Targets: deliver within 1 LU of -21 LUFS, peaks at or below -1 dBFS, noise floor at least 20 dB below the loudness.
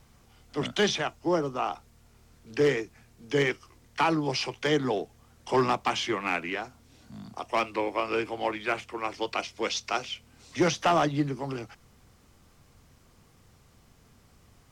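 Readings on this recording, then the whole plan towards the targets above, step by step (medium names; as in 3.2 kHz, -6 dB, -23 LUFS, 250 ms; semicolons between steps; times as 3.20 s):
clipped samples 0.3%; clipping level -16.5 dBFS; loudness -29.0 LUFS; peak level -16.5 dBFS; loudness target -21.0 LUFS
-> clip repair -16.5 dBFS; trim +8 dB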